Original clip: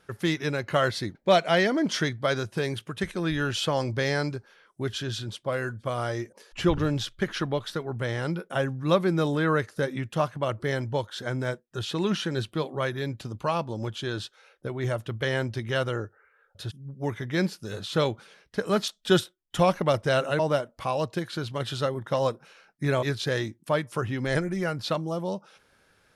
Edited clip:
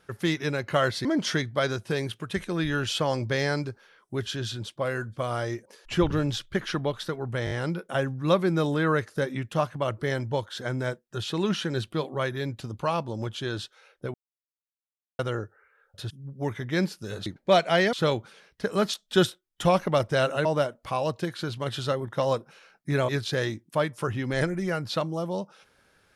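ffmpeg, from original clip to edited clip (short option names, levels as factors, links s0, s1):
-filter_complex "[0:a]asplit=9[s0][s1][s2][s3][s4][s5][s6][s7][s8];[s0]atrim=end=1.052[s9];[s1]atrim=start=1.718:end=8.142[s10];[s2]atrim=start=8.118:end=8.142[s11];[s3]atrim=start=8.118:end=8.142[s12];[s4]atrim=start=8.118:end=14.75,asetpts=PTS-STARTPTS,afade=t=out:st=6.628:d=0.004:c=hsin[s13];[s5]atrim=start=14.75:end=15.8,asetpts=PTS-STARTPTS,volume=0[s14];[s6]atrim=start=15.8:end=17.872,asetpts=PTS-STARTPTS,afade=t=in:d=0.004:c=hsin[s15];[s7]atrim=start=1.048:end=1.722[s16];[s8]atrim=start=17.868[s17];[s9][s10]acrossfade=d=0.004:c1=hsin:c2=hsin[s18];[s18][s11]acrossfade=d=0.004:c1=hsin:c2=hsin[s19];[s19][s12]acrossfade=d=0.004:c1=hsin:c2=hsin[s20];[s13][s14][s15]concat=n=3:v=0:a=1[s21];[s20][s21]acrossfade=d=0.004:c1=hsin:c2=hsin[s22];[s22][s16]acrossfade=d=0.004:c1=hsin:c2=hsin[s23];[s23][s17]acrossfade=d=0.004:c1=hsin:c2=hsin"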